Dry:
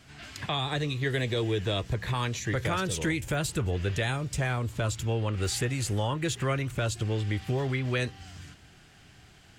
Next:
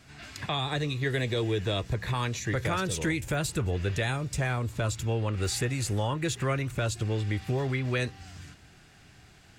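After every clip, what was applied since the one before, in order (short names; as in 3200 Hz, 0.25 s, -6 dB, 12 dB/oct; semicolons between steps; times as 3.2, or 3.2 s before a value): notch 3100 Hz, Q 13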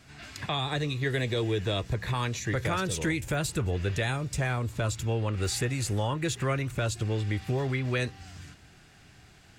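nothing audible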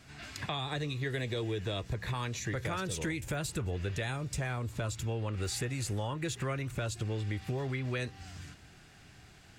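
compressor 2:1, threshold -34 dBFS, peak gain reduction 6 dB; gain -1 dB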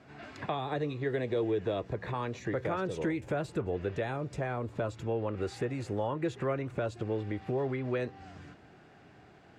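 band-pass 490 Hz, Q 0.79; gain +7 dB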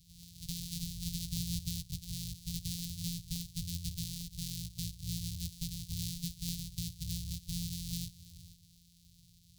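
sample sorter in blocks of 256 samples; elliptic band-stop 130–4000 Hz, stop band 60 dB; gain +3 dB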